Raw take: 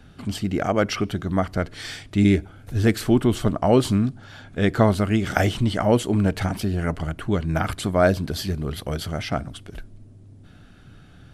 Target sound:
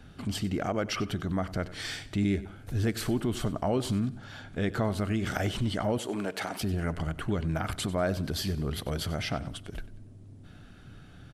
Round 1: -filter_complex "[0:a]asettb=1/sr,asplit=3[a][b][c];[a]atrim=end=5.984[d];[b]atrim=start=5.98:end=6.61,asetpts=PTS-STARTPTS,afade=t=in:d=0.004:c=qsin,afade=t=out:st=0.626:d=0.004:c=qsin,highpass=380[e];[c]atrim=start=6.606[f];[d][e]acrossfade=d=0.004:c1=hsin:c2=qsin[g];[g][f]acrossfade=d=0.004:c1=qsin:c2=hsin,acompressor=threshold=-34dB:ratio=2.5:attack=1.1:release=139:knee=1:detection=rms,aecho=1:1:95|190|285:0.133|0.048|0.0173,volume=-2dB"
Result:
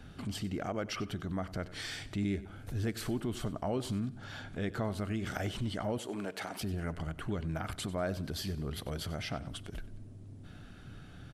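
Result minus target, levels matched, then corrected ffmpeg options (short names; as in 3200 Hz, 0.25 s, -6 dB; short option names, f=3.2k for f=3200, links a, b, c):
compressor: peak gain reduction +6 dB
-filter_complex "[0:a]asettb=1/sr,asplit=3[a][b][c];[a]atrim=end=5.984[d];[b]atrim=start=5.98:end=6.61,asetpts=PTS-STARTPTS,afade=t=in:d=0.004:c=qsin,afade=t=out:st=0.626:d=0.004:c=qsin,highpass=380[e];[c]atrim=start=6.606[f];[d][e]acrossfade=d=0.004:c1=hsin:c2=qsin[g];[g][f]acrossfade=d=0.004:c1=qsin:c2=hsin,acompressor=threshold=-24dB:ratio=2.5:attack=1.1:release=139:knee=1:detection=rms,aecho=1:1:95|190|285:0.133|0.048|0.0173,volume=-2dB"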